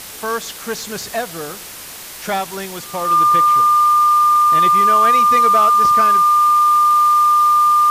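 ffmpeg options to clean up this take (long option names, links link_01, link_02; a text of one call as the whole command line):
ffmpeg -i in.wav -af "bandreject=frequency=1200:width=30,afwtdn=0.025" out.wav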